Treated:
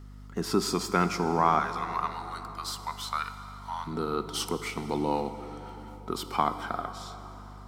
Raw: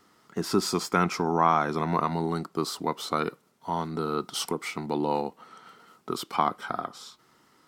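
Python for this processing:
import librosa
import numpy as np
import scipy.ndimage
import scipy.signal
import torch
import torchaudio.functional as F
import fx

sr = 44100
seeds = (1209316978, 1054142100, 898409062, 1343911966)

y = fx.highpass(x, sr, hz=950.0, slope=24, at=(1.59, 3.87))
y = fx.add_hum(y, sr, base_hz=50, snr_db=14)
y = fx.rev_plate(y, sr, seeds[0], rt60_s=4.6, hf_ratio=0.65, predelay_ms=0, drr_db=9.5)
y = y * 10.0 ** (-1.5 / 20.0)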